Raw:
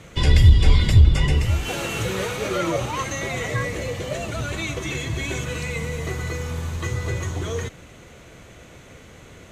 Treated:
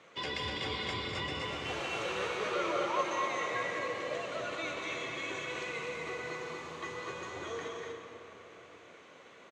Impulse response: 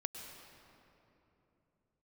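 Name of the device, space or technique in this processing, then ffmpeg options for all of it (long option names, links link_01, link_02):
station announcement: -filter_complex "[0:a]highpass=380,lowpass=4700,equalizer=frequency=1100:width_type=o:width=0.29:gain=5.5,aecho=1:1:201.2|244.9:0.355|0.562[link_01];[1:a]atrim=start_sample=2205[link_02];[link_01][link_02]afir=irnorm=-1:irlink=0,volume=-7.5dB"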